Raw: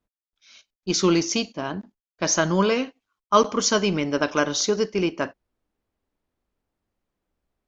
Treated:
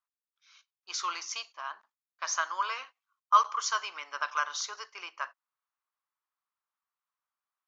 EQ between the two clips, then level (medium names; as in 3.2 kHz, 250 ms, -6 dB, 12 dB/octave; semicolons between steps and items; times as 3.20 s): ladder high-pass 1 kHz, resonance 60%; 0.0 dB